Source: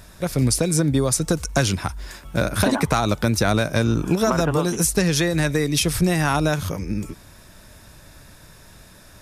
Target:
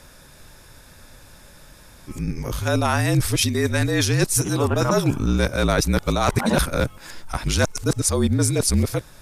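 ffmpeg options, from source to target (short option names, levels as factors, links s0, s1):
-af "areverse,afreqshift=-43"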